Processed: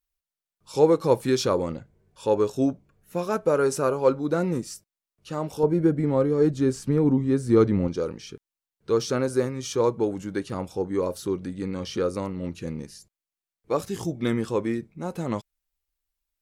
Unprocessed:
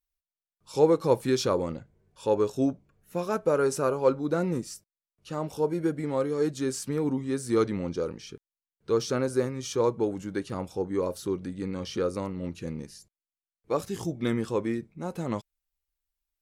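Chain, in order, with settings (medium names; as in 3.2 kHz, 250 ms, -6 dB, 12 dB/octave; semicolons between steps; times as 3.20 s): 5.63–7.88 s: tilt EQ -2.5 dB/octave; trim +2.5 dB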